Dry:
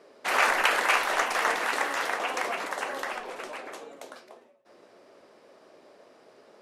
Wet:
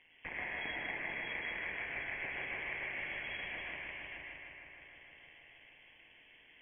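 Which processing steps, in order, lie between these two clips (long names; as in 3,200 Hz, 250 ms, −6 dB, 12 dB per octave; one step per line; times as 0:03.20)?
flat-topped bell 560 Hz −15 dB
downward compressor 6 to 1, threshold −38 dBFS, peak gain reduction 17.5 dB
phaser with its sweep stopped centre 820 Hz, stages 4
amplitude modulation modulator 160 Hz, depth 70%
feedback echo with a high-pass in the loop 155 ms, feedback 82%, high-pass 330 Hz, level −5.5 dB
convolution reverb RT60 0.90 s, pre-delay 102 ms, DRR 0.5 dB
voice inversion scrambler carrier 3,300 Hz
level +6.5 dB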